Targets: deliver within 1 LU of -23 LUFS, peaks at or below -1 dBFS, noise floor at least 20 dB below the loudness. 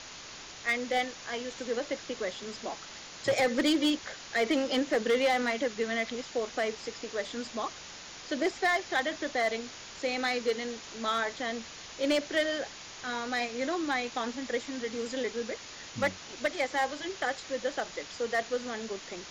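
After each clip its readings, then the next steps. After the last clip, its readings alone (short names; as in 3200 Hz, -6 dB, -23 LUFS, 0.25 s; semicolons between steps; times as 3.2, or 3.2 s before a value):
clipped 0.5%; flat tops at -20.5 dBFS; noise floor -46 dBFS; noise floor target -52 dBFS; loudness -31.5 LUFS; peak -20.5 dBFS; loudness target -23.0 LUFS
-> clip repair -20.5 dBFS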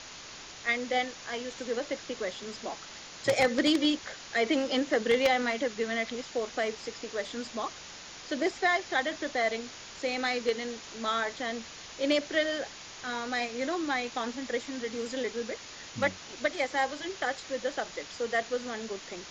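clipped 0.0%; noise floor -46 dBFS; noise floor target -51 dBFS
-> denoiser 6 dB, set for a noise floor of -46 dBFS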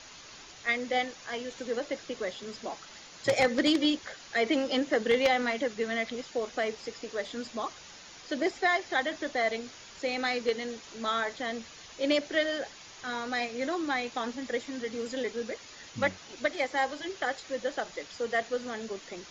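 noise floor -50 dBFS; noise floor target -52 dBFS
-> denoiser 6 dB, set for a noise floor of -50 dBFS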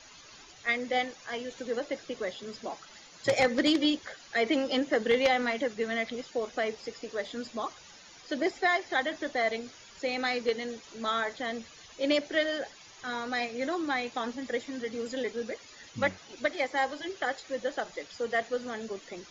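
noise floor -53 dBFS; loudness -31.5 LUFS; peak -11.5 dBFS; loudness target -23.0 LUFS
-> gain +8.5 dB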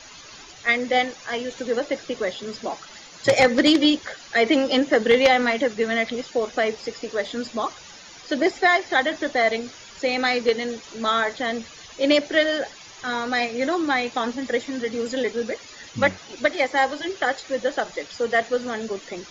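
loudness -23.0 LUFS; peak -3.0 dBFS; noise floor -44 dBFS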